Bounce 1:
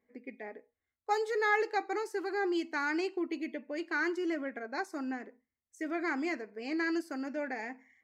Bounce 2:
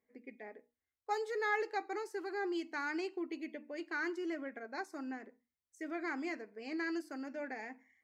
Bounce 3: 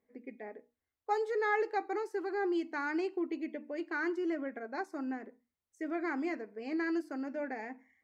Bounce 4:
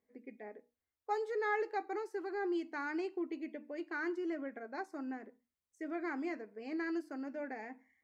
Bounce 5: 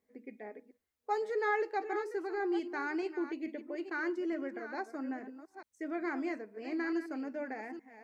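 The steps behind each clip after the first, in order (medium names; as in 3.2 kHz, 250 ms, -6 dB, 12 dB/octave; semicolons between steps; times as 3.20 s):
hum notches 60/120/180/240/300 Hz; trim -5.5 dB
treble shelf 2 kHz -10 dB; trim +5.5 dB
feedback comb 70 Hz, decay 0.24 s, mix 30%; trim -2 dB
chunks repeated in reverse 433 ms, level -11 dB; trim +2.5 dB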